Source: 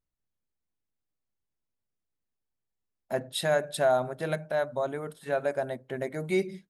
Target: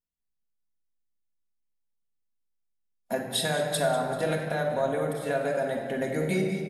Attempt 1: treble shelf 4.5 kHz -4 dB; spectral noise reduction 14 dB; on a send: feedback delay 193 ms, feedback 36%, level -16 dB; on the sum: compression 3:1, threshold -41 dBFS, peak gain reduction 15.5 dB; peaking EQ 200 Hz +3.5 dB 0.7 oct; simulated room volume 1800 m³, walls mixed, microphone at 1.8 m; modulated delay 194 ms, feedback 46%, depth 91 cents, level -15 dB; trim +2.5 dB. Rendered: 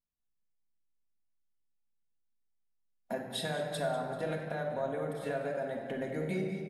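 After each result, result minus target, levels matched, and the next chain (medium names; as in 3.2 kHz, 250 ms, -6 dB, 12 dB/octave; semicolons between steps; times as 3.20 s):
compression: peak gain reduction +7.5 dB; 8 kHz band -5.5 dB
treble shelf 4.5 kHz -4 dB; spectral noise reduction 14 dB; on a send: feedback delay 193 ms, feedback 36%, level -16 dB; on the sum: compression 3:1, threshold -29.5 dBFS, peak gain reduction 8 dB; peaking EQ 200 Hz +3.5 dB 0.7 oct; simulated room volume 1800 m³, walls mixed, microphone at 1.8 m; modulated delay 194 ms, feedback 46%, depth 91 cents, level -15 dB; trim +2.5 dB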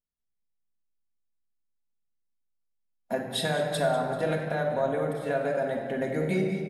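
8 kHz band -6.0 dB
treble shelf 4.5 kHz +6 dB; spectral noise reduction 14 dB; on a send: feedback delay 193 ms, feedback 36%, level -16 dB; on the sum: compression 3:1, threshold -29.5 dBFS, peak gain reduction 8 dB; peaking EQ 200 Hz +3.5 dB 0.7 oct; simulated room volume 1800 m³, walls mixed, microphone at 1.8 m; modulated delay 194 ms, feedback 46%, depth 91 cents, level -15 dB; trim +2.5 dB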